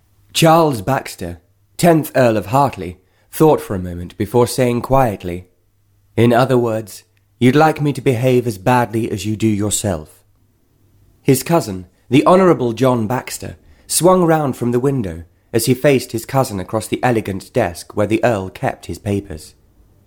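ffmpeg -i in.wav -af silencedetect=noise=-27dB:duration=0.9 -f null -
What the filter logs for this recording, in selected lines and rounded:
silence_start: 10.02
silence_end: 11.28 | silence_duration: 1.26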